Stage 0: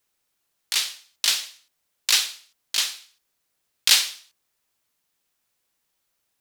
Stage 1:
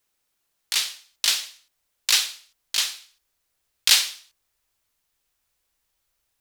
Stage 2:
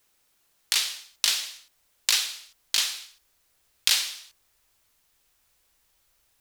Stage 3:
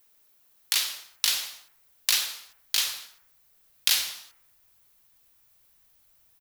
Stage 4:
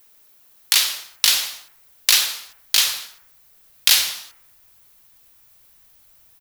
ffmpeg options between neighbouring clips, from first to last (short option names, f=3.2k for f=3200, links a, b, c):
-af "asubboost=boost=5.5:cutoff=77"
-af "acompressor=threshold=-30dB:ratio=3,volume=7dB"
-filter_complex "[0:a]acrossover=split=1600[a][b];[a]asplit=6[c][d][e][f][g][h];[d]adelay=88,afreqshift=61,volume=-5.5dB[i];[e]adelay=176,afreqshift=122,volume=-13dB[j];[f]adelay=264,afreqshift=183,volume=-20.6dB[k];[g]adelay=352,afreqshift=244,volume=-28.1dB[l];[h]adelay=440,afreqshift=305,volume=-35.6dB[m];[c][i][j][k][l][m]amix=inputs=6:normalize=0[n];[b]aexciter=amount=2.6:drive=3.5:freq=11k[o];[n][o]amix=inputs=2:normalize=0,volume=-1.5dB"
-af "aeval=exprs='0.891*sin(PI/2*1.78*val(0)/0.891)':c=same"